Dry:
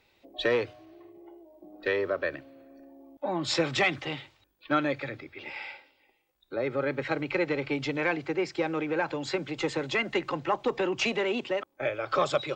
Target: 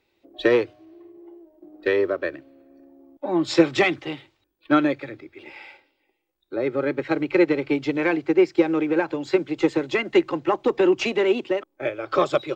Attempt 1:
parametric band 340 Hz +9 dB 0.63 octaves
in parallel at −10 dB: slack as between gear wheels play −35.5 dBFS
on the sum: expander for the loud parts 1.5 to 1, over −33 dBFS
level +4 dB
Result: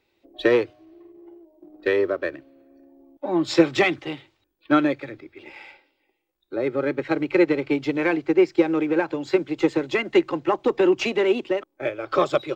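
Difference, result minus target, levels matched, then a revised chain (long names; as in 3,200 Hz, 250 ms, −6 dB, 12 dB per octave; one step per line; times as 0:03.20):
slack as between gear wheels: distortion +8 dB
parametric band 340 Hz +9 dB 0.63 octaves
in parallel at −10 dB: slack as between gear wheels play −44.5 dBFS
on the sum: expander for the loud parts 1.5 to 1, over −33 dBFS
level +4 dB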